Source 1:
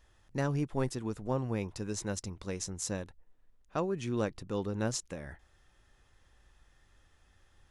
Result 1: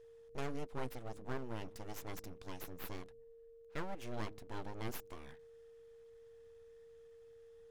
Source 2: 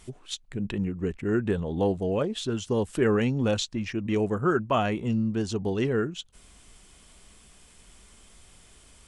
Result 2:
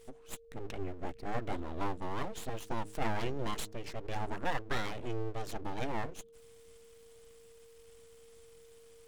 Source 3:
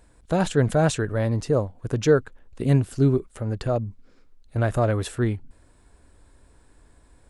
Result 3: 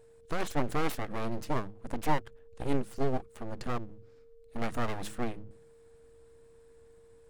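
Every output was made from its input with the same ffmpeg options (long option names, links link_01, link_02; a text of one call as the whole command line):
ffmpeg -i in.wav -af "bandreject=frequency=105.2:width_type=h:width=4,bandreject=frequency=210.4:width_type=h:width=4,aeval=exprs='abs(val(0))':channel_layout=same,aeval=exprs='val(0)+0.00355*sin(2*PI*460*n/s)':channel_layout=same,volume=-7dB" out.wav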